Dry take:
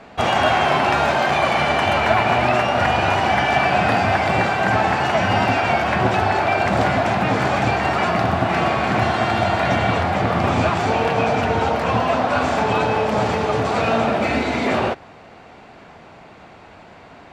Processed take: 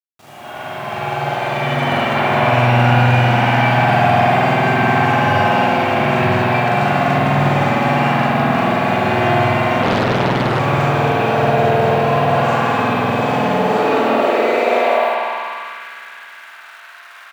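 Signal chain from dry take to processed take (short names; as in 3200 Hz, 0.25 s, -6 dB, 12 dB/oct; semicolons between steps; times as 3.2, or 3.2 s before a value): opening faded in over 2.27 s; high shelf 7200 Hz +6.5 dB; notches 60/120 Hz; loudspeakers at several distances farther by 14 m 0 dB, 70 m -1 dB; requantised 6-bit, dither none; spring tank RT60 3.7 s, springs 49 ms, chirp 45 ms, DRR -7.5 dB; high-pass sweep 130 Hz -> 1400 Hz, 13.28–15.87; 9.82–10.6 Doppler distortion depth 0.98 ms; gain -10 dB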